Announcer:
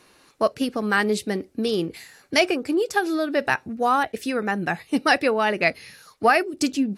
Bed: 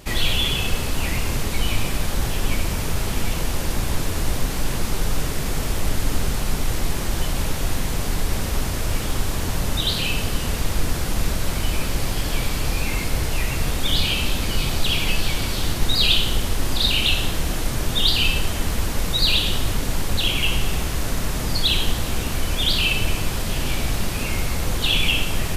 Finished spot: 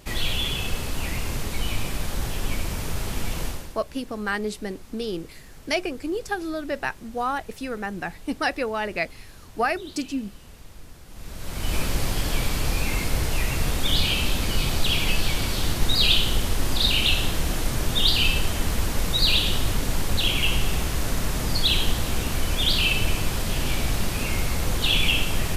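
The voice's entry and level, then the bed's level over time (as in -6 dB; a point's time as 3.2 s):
3.35 s, -6.0 dB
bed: 3.47 s -5 dB
3.82 s -22.5 dB
11.06 s -22.5 dB
11.75 s -1.5 dB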